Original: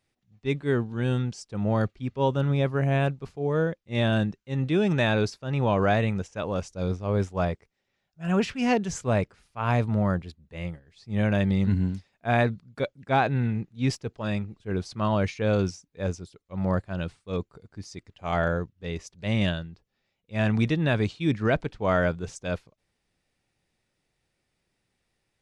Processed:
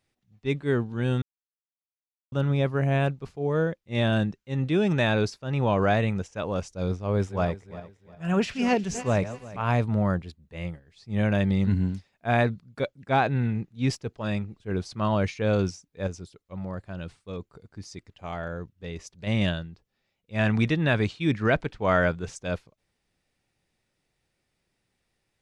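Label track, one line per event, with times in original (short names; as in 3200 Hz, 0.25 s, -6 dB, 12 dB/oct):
1.220000	2.320000	mute
7.090000	9.620000	regenerating reverse delay 0.177 s, feedback 53%, level -13 dB
16.070000	19.270000	compressor 3:1, threshold -32 dBFS
20.380000	22.430000	bell 1800 Hz +3.5 dB 1.7 oct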